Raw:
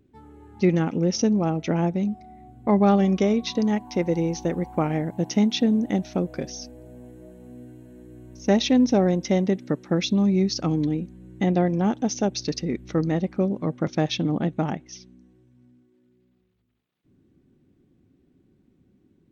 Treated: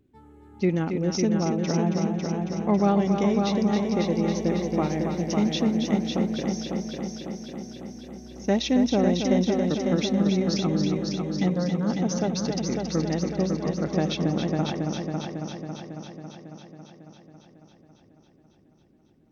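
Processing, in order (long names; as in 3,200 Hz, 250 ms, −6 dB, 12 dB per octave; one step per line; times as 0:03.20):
0:11.48–0:11.90: phaser with its sweep stopped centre 510 Hz, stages 8
echo machine with several playback heads 275 ms, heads first and second, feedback 64%, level −7 dB
level −3.5 dB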